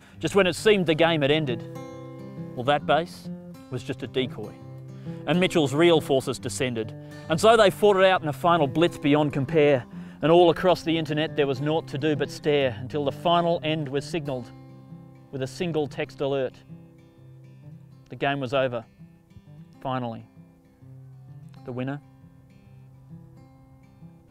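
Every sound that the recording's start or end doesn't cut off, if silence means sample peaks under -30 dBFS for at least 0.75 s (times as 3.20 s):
15.33–16.49 s
18.12–18.81 s
19.85–20.18 s
21.68–21.96 s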